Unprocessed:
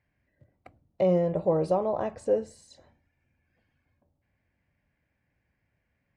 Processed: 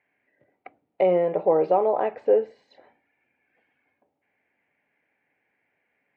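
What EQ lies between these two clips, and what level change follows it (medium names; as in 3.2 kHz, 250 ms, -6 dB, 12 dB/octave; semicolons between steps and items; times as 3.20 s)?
cabinet simulation 270–2700 Hz, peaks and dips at 280 Hz +4 dB, 430 Hz +9 dB, 780 Hz +7 dB, 1.1 kHz +6 dB, 2.2 kHz +4 dB; treble shelf 2 kHz +12 dB; band-stop 1.1 kHz, Q 7.2; 0.0 dB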